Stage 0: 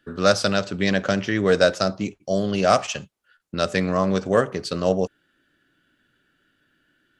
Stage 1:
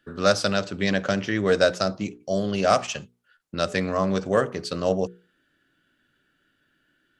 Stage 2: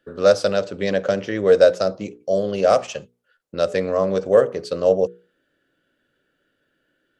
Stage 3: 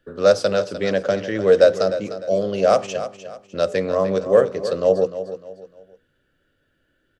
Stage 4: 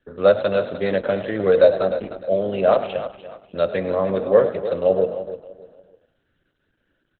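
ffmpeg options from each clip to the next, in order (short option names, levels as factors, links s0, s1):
-af "bandreject=f=60:t=h:w=6,bandreject=f=120:t=h:w=6,bandreject=f=180:t=h:w=6,bandreject=f=240:t=h:w=6,bandreject=f=300:t=h:w=6,bandreject=f=360:t=h:w=6,bandreject=f=420:t=h:w=6,bandreject=f=480:t=h:w=6,volume=0.794"
-af "equalizer=f=510:w=1.9:g=13,volume=0.708"
-filter_complex "[0:a]acrossover=split=100[s0][s1];[s0]acompressor=mode=upward:threshold=0.00112:ratio=2.5[s2];[s2][s1]amix=inputs=2:normalize=0,aecho=1:1:302|604|906:0.251|0.0854|0.029"
-filter_complex "[0:a]bandreject=f=116.2:t=h:w=4,bandreject=f=232.4:t=h:w=4,bandreject=f=348.6:t=h:w=4,bandreject=f=464.8:t=h:w=4,asplit=4[s0][s1][s2][s3];[s1]adelay=102,afreqshift=41,volume=0.211[s4];[s2]adelay=204,afreqshift=82,volume=0.0759[s5];[s3]adelay=306,afreqshift=123,volume=0.0275[s6];[s0][s4][s5][s6]amix=inputs=4:normalize=0" -ar 48000 -c:a libopus -b:a 8k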